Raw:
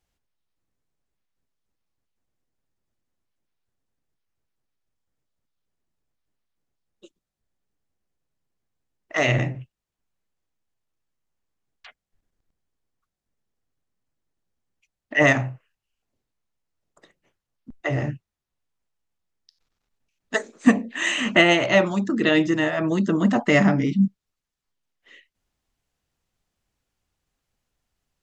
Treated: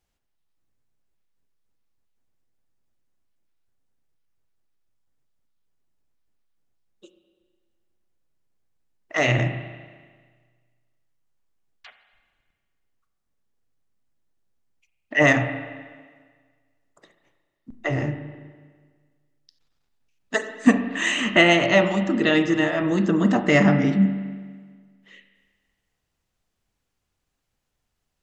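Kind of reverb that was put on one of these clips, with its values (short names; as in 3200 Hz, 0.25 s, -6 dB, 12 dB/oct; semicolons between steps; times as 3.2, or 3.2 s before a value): spring tank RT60 1.6 s, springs 33/41 ms, chirp 50 ms, DRR 8 dB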